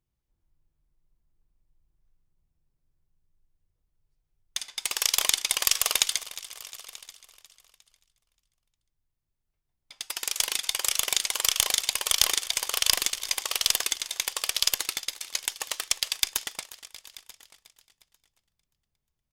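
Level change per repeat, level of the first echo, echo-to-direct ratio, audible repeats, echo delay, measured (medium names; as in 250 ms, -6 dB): no regular repeats, -17.5 dB, -14.5 dB, 5, 357 ms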